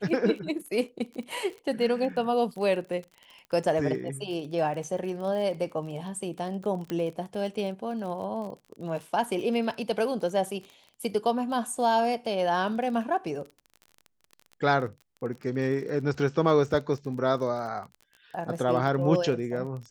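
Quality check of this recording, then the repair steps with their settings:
surface crackle 30 per second −36 dBFS
0:06.90: click −19 dBFS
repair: click removal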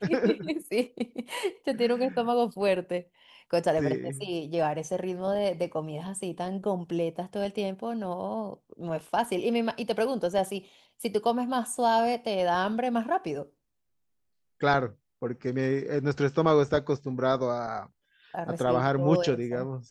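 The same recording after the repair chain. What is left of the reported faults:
0:06.90: click

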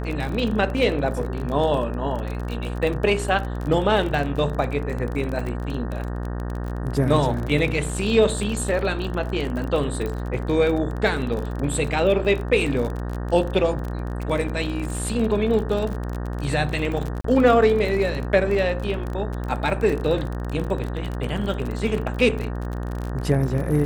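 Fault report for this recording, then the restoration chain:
mains buzz 60 Hz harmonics 31 −28 dBFS
surface crackle 32 per second −27 dBFS
0:10.06: click −17 dBFS
0:17.21–0:17.24: drop-out 34 ms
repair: click removal
hum removal 60 Hz, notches 31
repair the gap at 0:17.21, 34 ms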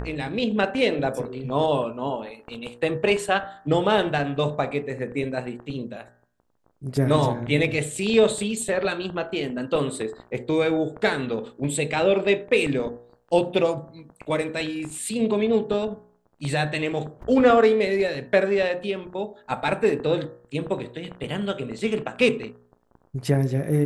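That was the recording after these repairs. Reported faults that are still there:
none of them is left

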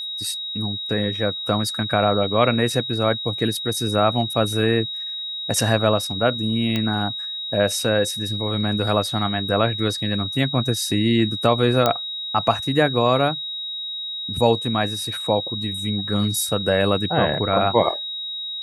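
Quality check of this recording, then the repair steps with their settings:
whistle 3,800 Hz −27 dBFS
0:06.76: click −10 dBFS
0:11.86: click −4 dBFS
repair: click removal
notch filter 3,800 Hz, Q 30

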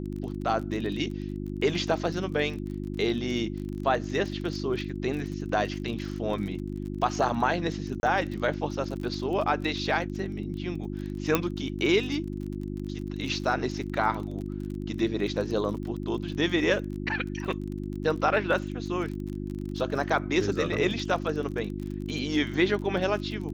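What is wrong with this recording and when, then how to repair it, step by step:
surface crackle 31 per second −35 dBFS
mains hum 50 Hz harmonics 7 −34 dBFS
0:08.00–0:08.03: drop-out 31 ms
0:11.35: click −8 dBFS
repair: click removal
hum removal 50 Hz, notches 7
repair the gap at 0:08.00, 31 ms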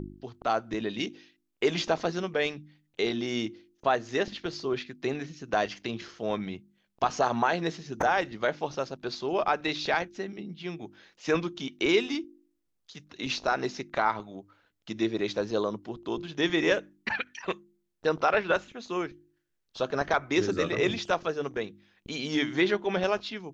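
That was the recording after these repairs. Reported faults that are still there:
0:11.35: click

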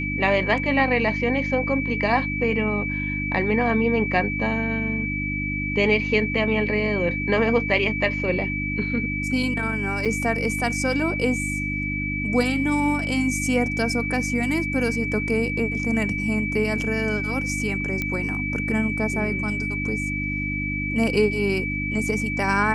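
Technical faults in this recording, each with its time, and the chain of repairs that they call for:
mains hum 50 Hz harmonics 6 −29 dBFS
whistle 2,300 Hz −27 dBFS
0:10.05–0:10.06: drop-out 5.9 ms
0:18.02: click −12 dBFS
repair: click removal
hum removal 50 Hz, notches 6
notch filter 2,300 Hz, Q 30
repair the gap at 0:10.05, 5.9 ms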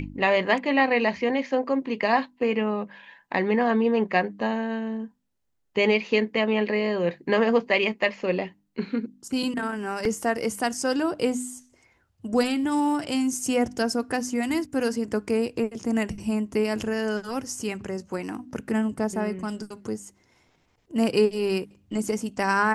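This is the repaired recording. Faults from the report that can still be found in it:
none of them is left

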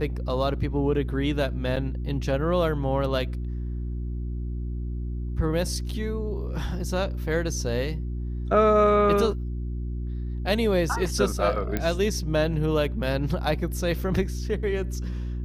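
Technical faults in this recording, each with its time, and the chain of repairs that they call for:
mains hum 60 Hz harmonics 6 −30 dBFS
0:01.76–0:01.77: drop-out 6 ms
0:11.77: click −12 dBFS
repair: click removal
hum removal 60 Hz, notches 6
repair the gap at 0:01.76, 6 ms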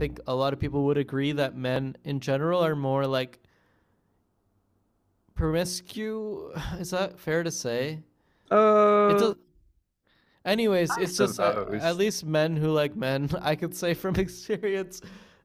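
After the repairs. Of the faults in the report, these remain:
none of them is left

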